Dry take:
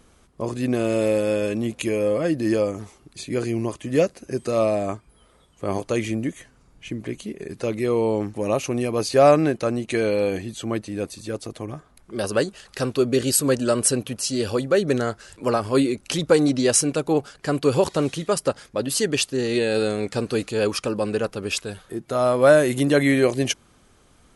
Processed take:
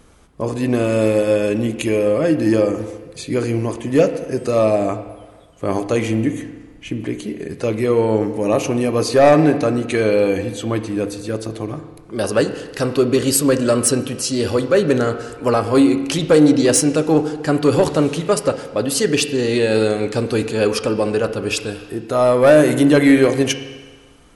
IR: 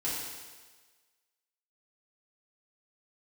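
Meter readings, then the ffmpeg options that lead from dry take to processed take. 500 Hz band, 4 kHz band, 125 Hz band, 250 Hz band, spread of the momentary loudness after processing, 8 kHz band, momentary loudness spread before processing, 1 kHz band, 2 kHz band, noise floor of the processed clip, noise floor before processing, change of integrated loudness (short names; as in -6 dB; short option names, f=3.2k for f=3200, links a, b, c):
+5.0 dB, +3.5 dB, +5.5 dB, +6.5 dB, 13 LU, +3.0 dB, 13 LU, +4.5 dB, +4.0 dB, -43 dBFS, -57 dBFS, +5.0 dB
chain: -filter_complex "[0:a]aeval=exprs='0.668*sin(PI/2*1.58*val(0)/0.668)':c=same,asplit=2[a][b];[1:a]atrim=start_sample=2205,lowpass=3k[c];[b][c]afir=irnorm=-1:irlink=0,volume=-11dB[d];[a][d]amix=inputs=2:normalize=0,volume=-4dB"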